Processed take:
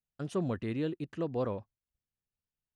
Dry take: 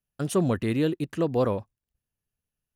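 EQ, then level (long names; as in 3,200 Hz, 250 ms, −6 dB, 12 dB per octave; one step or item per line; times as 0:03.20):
high-frequency loss of the air 84 metres
−8.5 dB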